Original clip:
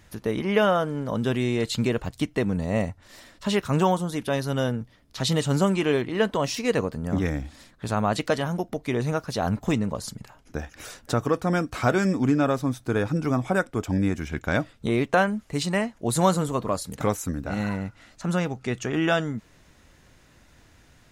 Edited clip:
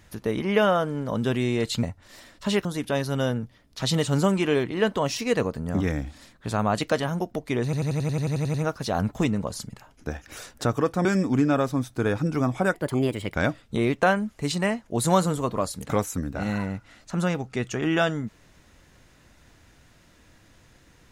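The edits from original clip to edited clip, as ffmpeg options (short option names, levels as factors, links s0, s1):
-filter_complex "[0:a]asplit=16[s0][s1][s2][s3][s4][s5][s6][s7][s8][s9][s10][s11][s12][s13][s14][s15];[s0]atrim=end=1.832[s16];[s1]atrim=start=2.828:end=3.652[s17];[s2]atrim=start=4.028:end=9.112[s18];[s3]atrim=start=9.018:end=9.112[s19];[s4]atrim=start=9.018:end=9.112[s20];[s5]atrim=start=9.018:end=9.112[s21];[s6]atrim=start=9.018:end=9.112[s22];[s7]atrim=start=9.018:end=9.112[s23];[s8]atrim=start=9.018:end=9.112[s24];[s9]atrim=start=9.018:end=9.112[s25];[s10]atrim=start=9.018:end=9.112[s26];[s11]atrim=start=9.018:end=9.112[s27];[s12]atrim=start=9.018:end=11.532[s28];[s13]atrim=start=11.948:end=13.644[s29];[s14]atrim=start=13.64:end=14.45,asetpts=PTS-STARTPTS,asetrate=59535,aresample=44100[s30];[s15]atrim=start=14.446[s31];[s16][s17]acrossfade=d=0.004:c1=hsin:c2=hsin[s32];[s32][s18]acrossfade=d=0.004:c1=hsin:c2=hsin[s33];[s33][s19]acrossfade=d=0.004:c1=hsin:c2=hsin[s34];[s34][s20]acrossfade=d=0.004:c1=hsin:c2=hsin[s35];[s35][s21]acrossfade=d=0.004:c1=hsin:c2=hsin[s36];[s36][s22]acrossfade=d=0.004:c1=hsin:c2=hsin[s37];[s37][s23]acrossfade=d=0.004:c1=hsin:c2=hsin[s38];[s38][s24]acrossfade=d=0.004:c1=hsin:c2=hsin[s39];[s39][s25]acrossfade=d=0.004:c1=hsin:c2=hsin[s40];[s40][s26]acrossfade=d=0.004:c1=hsin:c2=hsin[s41];[s41][s27]acrossfade=d=0.004:c1=hsin:c2=hsin[s42];[s42][s28]acrossfade=d=0.004:c1=hsin:c2=hsin[s43];[s43][s29]acrossfade=d=0.004:c1=hsin:c2=hsin[s44];[s44][s30]acrossfade=d=0.004:c1=hsin:c2=hsin[s45];[s45][s31]acrossfade=d=0.004:c1=hsin:c2=hsin"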